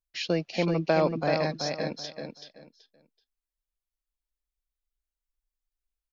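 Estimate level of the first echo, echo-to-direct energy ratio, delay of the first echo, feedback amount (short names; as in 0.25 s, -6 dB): -5.5 dB, -5.0 dB, 0.38 s, 24%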